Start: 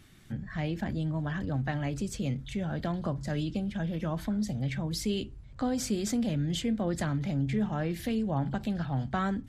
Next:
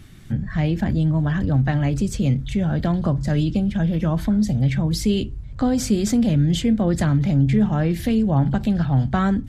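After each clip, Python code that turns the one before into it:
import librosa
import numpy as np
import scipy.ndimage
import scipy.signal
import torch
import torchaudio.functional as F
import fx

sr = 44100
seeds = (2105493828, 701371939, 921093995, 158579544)

y = fx.low_shelf(x, sr, hz=220.0, db=8.5)
y = y * librosa.db_to_amplitude(7.0)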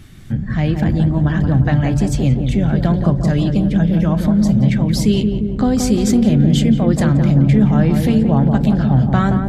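y = fx.echo_filtered(x, sr, ms=175, feedback_pct=74, hz=1000.0, wet_db=-4.5)
y = y * librosa.db_to_amplitude(3.5)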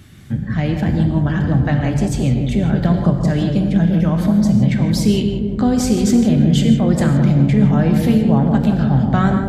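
y = scipy.signal.sosfilt(scipy.signal.butter(2, 55.0, 'highpass', fs=sr, output='sos'), x)
y = fx.wow_flutter(y, sr, seeds[0], rate_hz=2.1, depth_cents=23.0)
y = fx.rev_gated(y, sr, seeds[1], gate_ms=180, shape='flat', drr_db=6.0)
y = y * librosa.db_to_amplitude(-1.0)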